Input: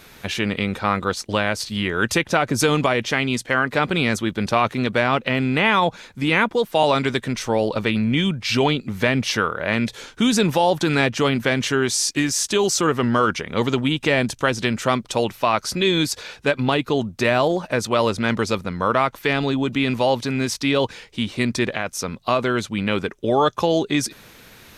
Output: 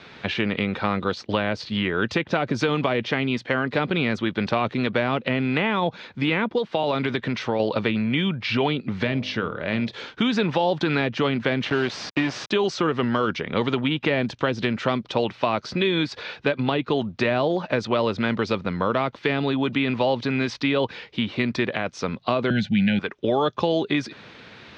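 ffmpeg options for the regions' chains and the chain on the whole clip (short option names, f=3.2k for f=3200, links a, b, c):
-filter_complex "[0:a]asettb=1/sr,asplit=3[a][b][c];[a]atrim=end=6.584[d];[b]atrim=start=6.58:end=7.6,asetpts=PTS-STARTPTS,afade=t=in:d=0.004:c=qsin,afade=t=out:st=1.016:d=0.004:c=qsin,lowpass=11k,acompressor=threshold=-20dB:ratio=3:attack=3.2:release=140:knee=1:detection=peak[e];[c]atrim=start=7.596[f];[d][e]acrossfade=d=0.004:c1=hsin:c2=qsin[g];[g][f]acrossfade=d=0.004:c1=qsin:c2=hsin,asettb=1/sr,asplit=3[h][i][j];[h]atrim=end=9.034[k];[i]atrim=start=9.03:end=9.91,asetpts=PTS-STARTPTS,afade=t=in:d=0.004:c=qsin,afade=t=out:st=0.876:d=0.004:c=qsin,lowpass=7.2k,equalizer=f=1.2k:t=o:w=2.7:g=-8.5,bandreject=f=51.12:t=h:w=4,bandreject=f=102.24:t=h:w=4,bandreject=f=153.36:t=h:w=4,bandreject=f=204.48:t=h:w=4,bandreject=f=255.6:t=h:w=4,bandreject=f=306.72:t=h:w=4,bandreject=f=357.84:t=h:w=4,bandreject=f=408.96:t=h:w=4,bandreject=f=460.08:t=h:w=4,bandreject=f=511.2:t=h:w=4,bandreject=f=562.32:t=h:w=4,bandreject=f=613.44:t=h:w=4,bandreject=f=664.56:t=h:w=4,bandreject=f=715.68:t=h:w=4,bandreject=f=766.8:t=h:w=4,bandreject=f=817.92:t=h:w=4,bandreject=f=869.04:t=h:w=4,bandreject=f=920.16:t=h:w=4,bandreject=f=971.28:t=h:w=4,bandreject=f=1.0224k:t=h:w=4,bandreject=f=1.07352k:t=h:w=4,bandreject=f=1.12464k:t=h:w=4,bandreject=f=1.17576k:t=h:w=4,bandreject=f=1.22688k:t=h:w=4,bandreject=f=1.278k:t=h:w=4[l];[j]atrim=start=9.906[m];[k][l]acrossfade=d=0.004:c1=hsin:c2=qsin[n];[n][m]acrossfade=d=0.004:c1=qsin:c2=hsin,asettb=1/sr,asplit=3[o][p][q];[o]atrim=end=11.654[r];[p]atrim=start=11.65:end=12.51,asetpts=PTS-STARTPTS,afade=t=in:d=0.004:c=qsin,afade=t=out:st=0.856:d=0.004:c=qsin,acrusher=bits=3:mix=0:aa=0.5,highshelf=f=4.8k:g=-7[s];[q]atrim=start=12.506[t];[r][s]acrossfade=d=0.004:c1=hsin:c2=qsin[u];[u][t]acrossfade=d=0.004:c1=qsin:c2=hsin,asettb=1/sr,asplit=3[v][w][x];[v]atrim=end=22.504[y];[w]atrim=start=22.5:end=22.99,asetpts=PTS-STARTPTS,afade=t=in:d=0.004:c=qsin,afade=t=out:st=0.486:d=0.004:c=qsin,asuperstop=centerf=1100:order=20:qfactor=1.8,lowshelf=f=270:t=q:w=3:g=10.5[z];[x]atrim=start=22.986[aa];[y][z]acrossfade=d=0.004:c1=hsin:c2=qsin[ab];[ab][aa]acrossfade=d=0.004:c1=qsin:c2=hsin,lowpass=f=4.3k:w=0.5412,lowpass=f=4.3k:w=1.3066,acrossover=split=600|2900[ac][ad][ae];[ac]acompressor=threshold=-24dB:ratio=4[af];[ad]acompressor=threshold=-29dB:ratio=4[ag];[ae]acompressor=threshold=-38dB:ratio=4[ah];[af][ag][ah]amix=inputs=3:normalize=0,highpass=100,volume=2.5dB"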